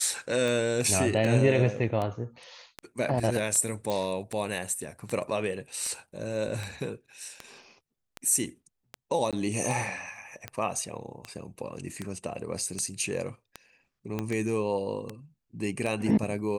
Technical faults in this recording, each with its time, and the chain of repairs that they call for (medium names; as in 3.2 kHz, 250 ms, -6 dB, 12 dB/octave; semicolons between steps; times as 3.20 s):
tick 78 rpm
3.90 s: pop -18 dBFS
9.31–9.33 s: dropout 17 ms
14.19 s: pop -17 dBFS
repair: de-click; interpolate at 9.31 s, 17 ms